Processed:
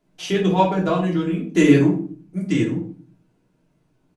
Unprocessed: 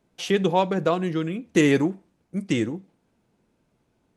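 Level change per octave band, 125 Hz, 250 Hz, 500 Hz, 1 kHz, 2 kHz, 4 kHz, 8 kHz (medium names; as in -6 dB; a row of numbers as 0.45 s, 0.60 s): +6.5 dB, +5.5 dB, +2.0 dB, +4.0 dB, +1.5 dB, +1.0 dB, +0.5 dB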